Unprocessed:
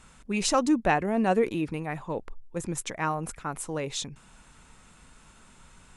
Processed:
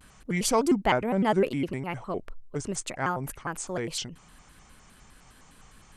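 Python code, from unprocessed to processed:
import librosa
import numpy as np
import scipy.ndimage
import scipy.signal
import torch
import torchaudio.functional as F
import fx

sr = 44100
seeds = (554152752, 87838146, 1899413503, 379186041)

y = fx.vibrato_shape(x, sr, shape='square', rate_hz=4.9, depth_cents=250.0)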